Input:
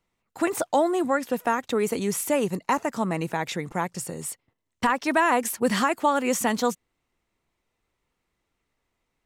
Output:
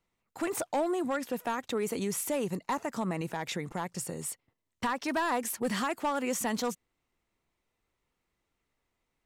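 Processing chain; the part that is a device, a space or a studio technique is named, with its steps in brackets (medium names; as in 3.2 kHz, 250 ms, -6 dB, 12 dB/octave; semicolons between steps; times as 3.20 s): clipper into limiter (hard clipper -16.5 dBFS, distortion -17 dB; peak limiter -20.5 dBFS, peak gain reduction 4 dB); trim -3.5 dB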